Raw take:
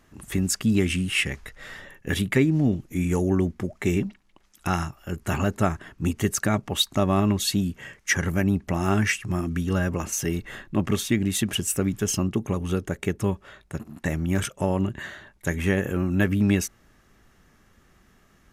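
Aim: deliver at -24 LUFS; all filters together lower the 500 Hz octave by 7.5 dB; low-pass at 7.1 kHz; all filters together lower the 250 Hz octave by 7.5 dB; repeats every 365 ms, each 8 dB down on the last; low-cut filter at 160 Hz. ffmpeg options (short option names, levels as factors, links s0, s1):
-af "highpass=160,lowpass=7100,equalizer=f=250:t=o:g=-7,equalizer=f=500:t=o:g=-7.5,aecho=1:1:365|730|1095|1460|1825:0.398|0.159|0.0637|0.0255|0.0102,volume=2"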